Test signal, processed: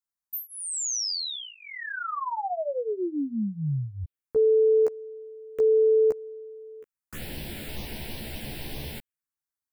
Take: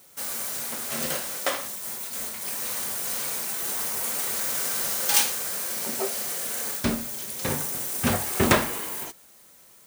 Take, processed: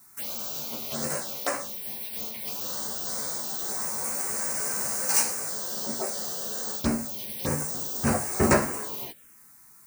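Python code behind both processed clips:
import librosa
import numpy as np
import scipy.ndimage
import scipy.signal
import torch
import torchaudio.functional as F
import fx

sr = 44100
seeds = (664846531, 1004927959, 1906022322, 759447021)

y = fx.doubler(x, sr, ms=14.0, db=-2.0)
y = fx.env_phaser(y, sr, low_hz=490.0, high_hz=3400.0, full_db=-22.5)
y = y * librosa.db_to_amplitude(-1.5)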